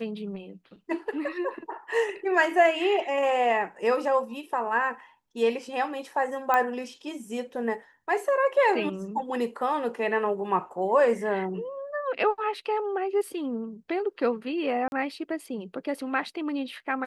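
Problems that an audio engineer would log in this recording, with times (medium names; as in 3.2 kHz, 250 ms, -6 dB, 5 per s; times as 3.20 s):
6.54 s: pop -12 dBFS
14.88–14.92 s: dropout 41 ms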